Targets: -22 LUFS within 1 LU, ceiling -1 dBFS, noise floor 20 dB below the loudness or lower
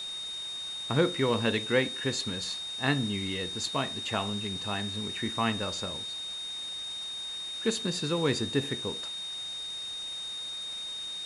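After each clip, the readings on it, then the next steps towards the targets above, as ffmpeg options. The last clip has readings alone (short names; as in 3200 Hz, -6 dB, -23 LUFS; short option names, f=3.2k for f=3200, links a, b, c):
steady tone 3700 Hz; tone level -35 dBFS; noise floor -38 dBFS; noise floor target -51 dBFS; loudness -31.0 LUFS; peak -12.5 dBFS; loudness target -22.0 LUFS
-> -af "bandreject=f=3.7k:w=30"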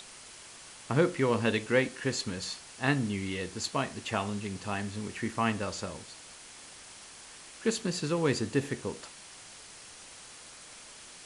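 steady tone none; noise floor -50 dBFS; noise floor target -52 dBFS
-> -af "afftdn=nr=6:nf=-50"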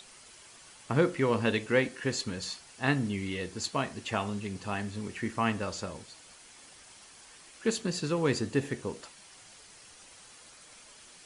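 noise floor -54 dBFS; loudness -31.5 LUFS; peak -13.0 dBFS; loudness target -22.0 LUFS
-> -af "volume=9.5dB"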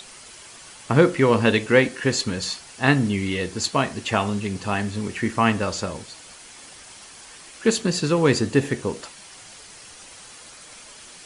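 loudness -22.0 LUFS; peak -3.5 dBFS; noise floor -44 dBFS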